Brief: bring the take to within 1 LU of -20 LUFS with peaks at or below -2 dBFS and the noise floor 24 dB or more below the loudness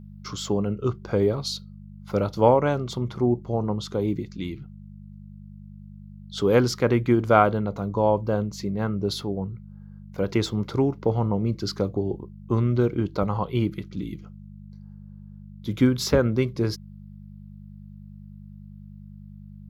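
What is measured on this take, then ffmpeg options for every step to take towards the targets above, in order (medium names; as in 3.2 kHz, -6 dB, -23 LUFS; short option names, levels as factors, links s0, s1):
hum 50 Hz; highest harmonic 200 Hz; hum level -41 dBFS; loudness -24.5 LUFS; peak level -2.5 dBFS; loudness target -20.0 LUFS
-> -af "bandreject=f=50:t=h:w=4,bandreject=f=100:t=h:w=4,bandreject=f=150:t=h:w=4,bandreject=f=200:t=h:w=4"
-af "volume=1.68,alimiter=limit=0.794:level=0:latency=1"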